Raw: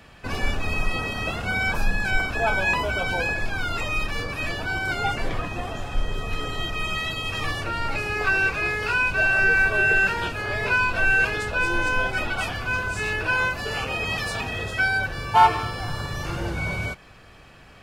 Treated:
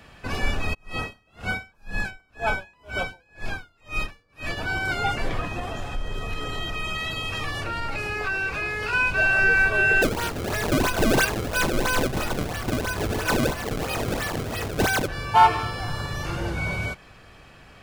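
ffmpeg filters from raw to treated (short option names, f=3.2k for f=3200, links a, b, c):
-filter_complex "[0:a]asplit=3[a][b][c];[a]afade=t=out:st=0.73:d=0.02[d];[b]aeval=exprs='val(0)*pow(10,-38*(0.5-0.5*cos(2*PI*2*n/s))/20)':c=same,afade=t=in:st=0.73:d=0.02,afade=t=out:st=4.56:d=0.02[e];[c]afade=t=in:st=4.56:d=0.02[f];[d][e][f]amix=inputs=3:normalize=0,asettb=1/sr,asplit=3[g][h][i];[g]atrim=end=5.594[j];[h]atrim=start=5.59:end=8.93,asetpts=PTS-STARTPTS,afade=t=in:d=0.004:c=qsin,afade=t=out:st=3.336:d=0.004:c=qsin,acompressor=threshold=-25dB:ratio=2.5:attack=3.2:release=140:knee=1:detection=peak[k];[i]atrim=start=8.926[l];[j][k]acrossfade=d=0.004:c1=hsin:c2=qsin[m];[m][l]acrossfade=d=0.004:c1=qsin:c2=hsin,asplit=3[n][o][p];[n]afade=t=out:st=10.01:d=0.02[q];[o]acrusher=samples=28:mix=1:aa=0.000001:lfo=1:lforange=44.8:lforate=3,afade=t=in:st=10.01:d=0.02,afade=t=out:st=15.07:d=0.02[r];[p]afade=t=in:st=15.07:d=0.02[s];[q][r][s]amix=inputs=3:normalize=0"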